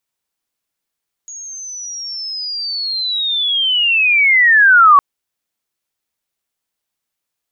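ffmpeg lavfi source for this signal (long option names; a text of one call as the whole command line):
ffmpeg -f lavfi -i "aevalsrc='pow(10,(-28.5+25*t/3.71)/20)*sin(2*PI*(6700*t-5600*t*t/(2*3.71)))':duration=3.71:sample_rate=44100" out.wav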